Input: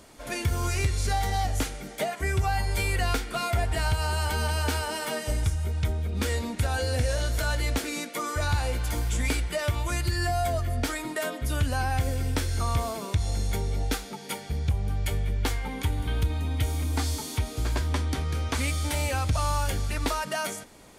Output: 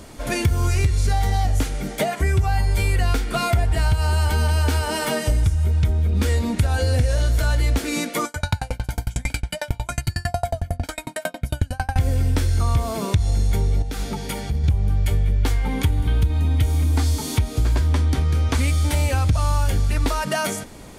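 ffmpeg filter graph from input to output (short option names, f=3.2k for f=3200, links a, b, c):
-filter_complex "[0:a]asettb=1/sr,asplit=3[a][b][c];[a]atrim=end=8.254[d];[b]atrim=start=8.25:end=11.96,asetpts=PTS-STARTPTS,afade=t=in:d=0.004:c=qsin,afade=t=out:st=3.706:d=0.004:c=qsin,highpass=f=150:p=1,aecho=1:1:1.3:0.87,atrim=end_sample=163611,aeval=exprs='val(0)*pow(10,-37*if(lt(mod(11*n/s,1),2*abs(11)/1000),1-mod(11*n/s,1)/(2*abs(11)/1000),(mod(11*n/s,1)-2*abs(11)/1000)/(1-2*abs(11)/1000))/20)':c=same[e];[c]atrim=start=11.956[f];[d][e]acrossfade=d=0.004:c1=hsin:c2=qsin[g];[g][f]acrossfade=d=0.004:c1=qsin:c2=hsin,asettb=1/sr,asplit=3[h][i][j];[h]atrim=end=13.824[k];[i]atrim=start=13.82:end=14.64,asetpts=PTS-STARTPTS,afade=t=in:d=0.004:c=qsin,afade=t=out:st=0.816:d=0.004:c=qsin,acompressor=threshold=-32dB:ratio=12:attack=3.2:release=140:knee=1:detection=peak,aeval=exprs='val(0)+0.00501*(sin(2*PI*50*n/s)+sin(2*PI*2*50*n/s)/2+sin(2*PI*3*50*n/s)/3+sin(2*PI*4*50*n/s)/4+sin(2*PI*5*50*n/s)/5)':c=same[l];[j]atrim=start=14.636[m];[k][l]acrossfade=d=0.004:c1=hsin:c2=qsin[n];[n][m]acrossfade=d=0.004:c1=qsin:c2=hsin,lowshelf=f=270:g=8,acompressor=threshold=-26dB:ratio=2.5,volume=7.5dB"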